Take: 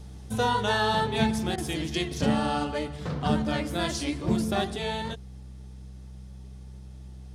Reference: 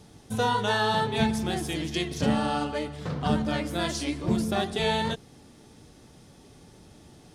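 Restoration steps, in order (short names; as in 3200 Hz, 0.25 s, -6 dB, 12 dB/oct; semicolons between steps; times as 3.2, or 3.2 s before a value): de-hum 64.3 Hz, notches 3; interpolate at 1.56, 18 ms; gain 0 dB, from 4.76 s +5.5 dB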